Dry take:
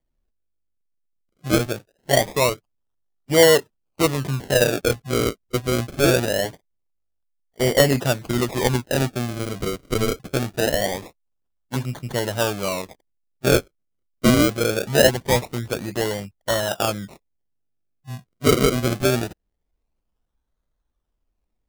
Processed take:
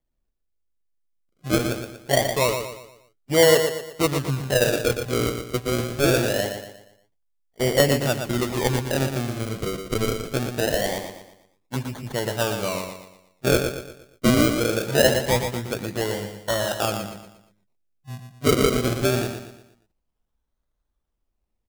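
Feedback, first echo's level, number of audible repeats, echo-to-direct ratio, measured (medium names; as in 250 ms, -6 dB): 41%, -7.0 dB, 4, -6.0 dB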